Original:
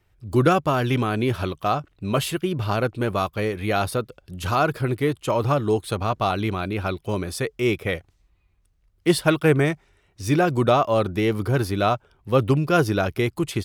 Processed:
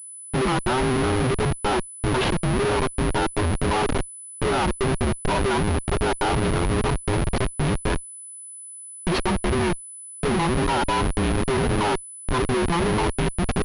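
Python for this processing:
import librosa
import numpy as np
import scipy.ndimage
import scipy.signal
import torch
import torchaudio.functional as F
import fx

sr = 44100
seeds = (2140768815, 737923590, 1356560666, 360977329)

y = fx.band_invert(x, sr, width_hz=500)
y = fx.schmitt(y, sr, flips_db=-25.0)
y = fx.pwm(y, sr, carrier_hz=10000.0)
y = y * librosa.db_to_amplitude(2.0)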